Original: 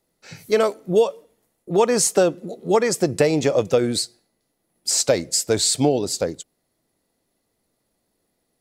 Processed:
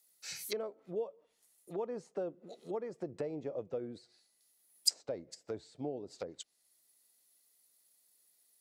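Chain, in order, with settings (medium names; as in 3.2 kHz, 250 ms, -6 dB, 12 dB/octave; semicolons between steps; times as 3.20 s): low-pass that closes with the level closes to 470 Hz, closed at -18 dBFS; pre-emphasis filter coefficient 0.97; trim +5.5 dB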